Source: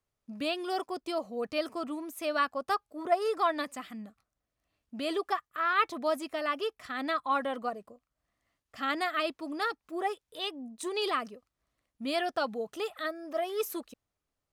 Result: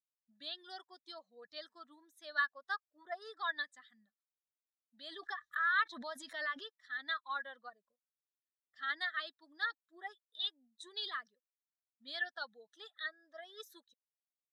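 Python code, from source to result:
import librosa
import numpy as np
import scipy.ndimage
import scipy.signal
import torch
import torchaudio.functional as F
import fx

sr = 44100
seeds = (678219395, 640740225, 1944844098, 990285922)

y = fx.bin_expand(x, sr, power=1.5)
y = fx.double_bandpass(y, sr, hz=2500.0, octaves=1.1)
y = fx.pre_swell(y, sr, db_per_s=53.0, at=(5.08, 6.67))
y = y * 10.0 ** (5.5 / 20.0)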